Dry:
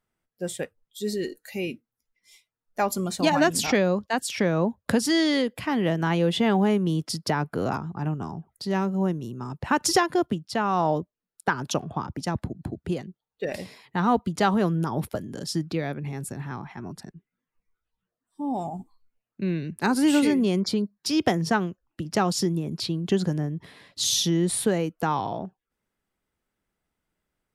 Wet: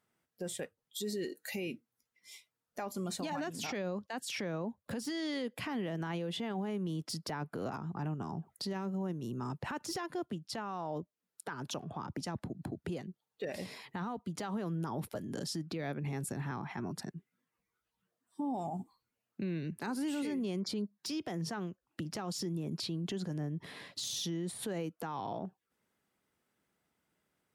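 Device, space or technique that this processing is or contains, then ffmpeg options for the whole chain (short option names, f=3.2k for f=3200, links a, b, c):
podcast mastering chain: -af "highpass=110,deesser=0.55,acompressor=threshold=-38dB:ratio=3,alimiter=level_in=7.5dB:limit=-24dB:level=0:latency=1:release=16,volume=-7.5dB,volume=2.5dB" -ar 48000 -c:a libmp3lame -b:a 96k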